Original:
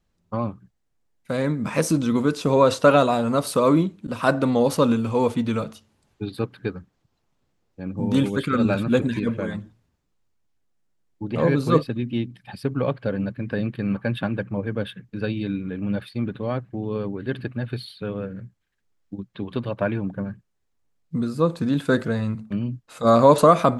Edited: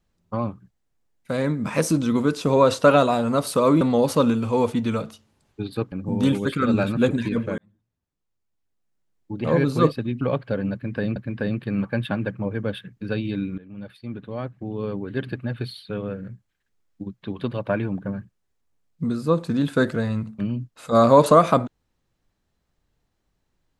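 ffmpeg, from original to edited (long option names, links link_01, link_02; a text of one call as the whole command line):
ffmpeg -i in.wav -filter_complex "[0:a]asplit=7[link_01][link_02][link_03][link_04][link_05][link_06][link_07];[link_01]atrim=end=3.812[link_08];[link_02]atrim=start=4.428:end=6.542[link_09];[link_03]atrim=start=7.828:end=9.49,asetpts=PTS-STARTPTS,afade=type=out:start_time=1.658:duration=0.004:curve=hsin[link_10];[link_04]atrim=start=9.49:end=12.122,asetpts=PTS-STARTPTS,afade=type=in:duration=1.93[link_11];[link_05]atrim=start=12.758:end=13.712[link_12];[link_06]atrim=start=13.278:end=15.7,asetpts=PTS-STARTPTS,afade=type=out:start_time=2.418:duration=0.004:curve=hsin:silence=0.133352[link_13];[link_07]atrim=start=15.7,asetpts=PTS-STARTPTS,afade=type=in:duration=1.48:silence=0.133352[link_14];[link_08][link_09]acrossfade=duration=0.004:curve1=hsin:curve2=hsin[link_15];[link_10][link_11]concat=n=2:v=0:a=1[link_16];[link_15][link_16]acrossfade=duration=0.004:curve1=hsin:curve2=hsin[link_17];[link_17][link_12]acrossfade=duration=0.004:curve1=hsin:curve2=hsin[link_18];[link_13][link_14]concat=n=2:v=0:a=1[link_19];[link_18][link_19]acrossfade=duration=0.004:curve1=hsin:curve2=hsin" out.wav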